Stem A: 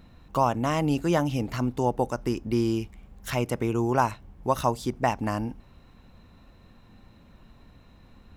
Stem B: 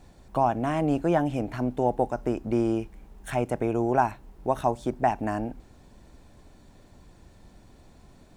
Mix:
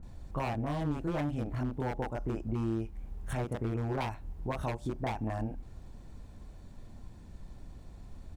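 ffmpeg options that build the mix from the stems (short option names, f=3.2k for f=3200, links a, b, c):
-filter_complex "[0:a]lowpass=1.2k,aemphasis=mode=reproduction:type=bsi,volume=-7.5dB[a];[1:a]aeval=exprs='0.106*(abs(mod(val(0)/0.106+3,4)-2)-1)':c=same,adelay=28,volume=-4dB[b];[a][b]amix=inputs=2:normalize=0,acompressor=threshold=-35dB:ratio=2"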